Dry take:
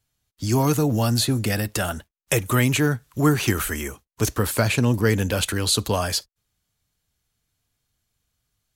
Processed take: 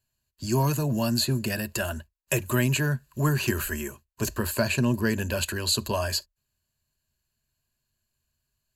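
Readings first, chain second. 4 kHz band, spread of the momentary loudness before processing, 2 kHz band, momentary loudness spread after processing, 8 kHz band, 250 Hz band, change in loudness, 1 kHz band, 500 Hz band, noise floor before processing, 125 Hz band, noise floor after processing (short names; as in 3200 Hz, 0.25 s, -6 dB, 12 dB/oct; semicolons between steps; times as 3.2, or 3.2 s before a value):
-3.5 dB, 8 LU, -3.5 dB, 7 LU, -4.5 dB, -4.5 dB, -4.5 dB, -5.5 dB, -5.0 dB, -84 dBFS, -4.5 dB, -81 dBFS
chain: ripple EQ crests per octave 1.4, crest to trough 11 dB; gain -6 dB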